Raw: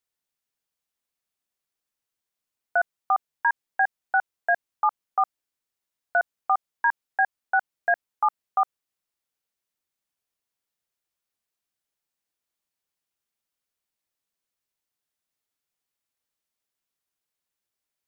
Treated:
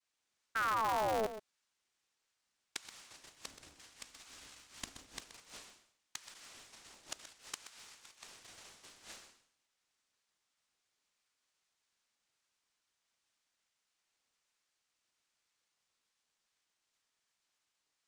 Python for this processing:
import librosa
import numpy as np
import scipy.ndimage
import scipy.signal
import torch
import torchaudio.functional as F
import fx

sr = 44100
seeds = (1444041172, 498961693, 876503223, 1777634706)

p1 = fx.reverse_delay(x, sr, ms=123, wet_db=-3)
p2 = scipy.signal.sosfilt(scipy.signal.cheby1(4, 1.0, [350.0, 1000.0], 'bandstop', fs=sr, output='sos'), p1)
p3 = fx.resonator_bank(p2, sr, root=55, chord='sus4', decay_s=0.65)
p4 = fx.fold_sine(p3, sr, drive_db=19, ceiling_db=-29.5)
p5 = p3 + (p4 * 10.0 ** (-5.5 / 20.0))
p6 = fx.noise_vocoder(p5, sr, seeds[0], bands=2)
p7 = fx.spec_paint(p6, sr, seeds[1], shape='fall', start_s=0.55, length_s=0.72, low_hz=510.0, high_hz=1500.0, level_db=-40.0)
p8 = fx.peak_eq(p7, sr, hz=160.0, db=13.5, octaves=1.0, at=(3.46, 5.21))
p9 = fx.gate_flip(p8, sr, shuts_db=-32.0, range_db=-27)
p10 = p9 + fx.echo_single(p9, sr, ms=127, db=-12.0, dry=0)
p11 = p10 * np.sign(np.sin(2.0 * np.pi * 110.0 * np.arange(len(p10)) / sr))
y = p11 * 10.0 ** (7.0 / 20.0)